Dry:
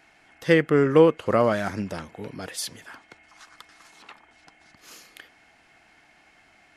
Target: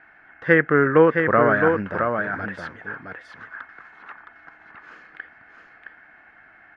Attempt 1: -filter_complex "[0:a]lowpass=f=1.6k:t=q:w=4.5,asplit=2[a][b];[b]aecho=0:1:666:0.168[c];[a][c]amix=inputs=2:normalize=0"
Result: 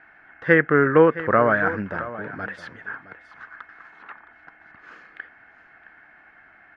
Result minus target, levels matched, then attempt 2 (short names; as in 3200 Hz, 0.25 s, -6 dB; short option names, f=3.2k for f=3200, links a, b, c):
echo-to-direct -10 dB
-filter_complex "[0:a]lowpass=f=1.6k:t=q:w=4.5,asplit=2[a][b];[b]aecho=0:1:666:0.531[c];[a][c]amix=inputs=2:normalize=0"